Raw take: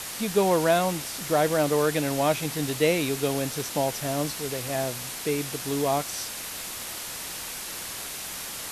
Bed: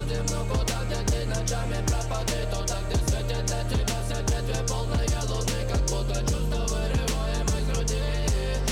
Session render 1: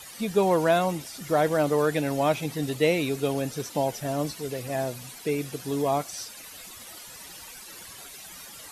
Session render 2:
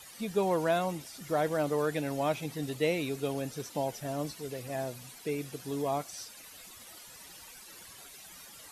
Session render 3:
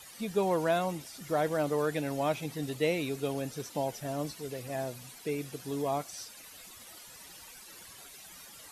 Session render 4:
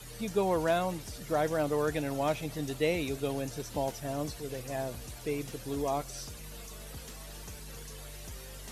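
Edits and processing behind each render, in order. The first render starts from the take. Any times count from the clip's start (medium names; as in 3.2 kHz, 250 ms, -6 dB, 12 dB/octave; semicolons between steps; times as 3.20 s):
noise reduction 13 dB, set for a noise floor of -36 dBFS
trim -6.5 dB
no audible change
add bed -20.5 dB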